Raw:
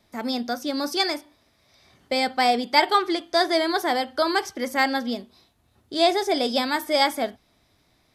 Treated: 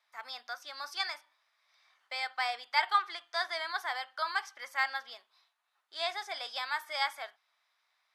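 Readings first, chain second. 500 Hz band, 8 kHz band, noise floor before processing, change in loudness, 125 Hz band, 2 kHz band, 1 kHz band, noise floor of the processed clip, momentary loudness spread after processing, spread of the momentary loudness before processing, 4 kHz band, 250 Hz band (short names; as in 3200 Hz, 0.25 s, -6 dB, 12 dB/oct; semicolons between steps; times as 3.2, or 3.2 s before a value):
-21.0 dB, -14.5 dB, -65 dBFS, -11.0 dB, n/a, -6.5 dB, -11.0 dB, -78 dBFS, 13 LU, 9 LU, -11.0 dB, under -40 dB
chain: HPF 1100 Hz 24 dB/oct; tilt -4 dB/oct; gain -3 dB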